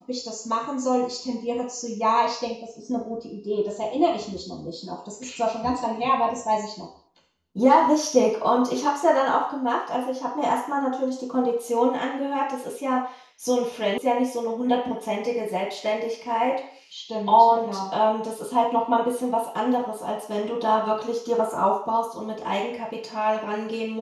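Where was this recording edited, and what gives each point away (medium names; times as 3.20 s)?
13.98 s: sound stops dead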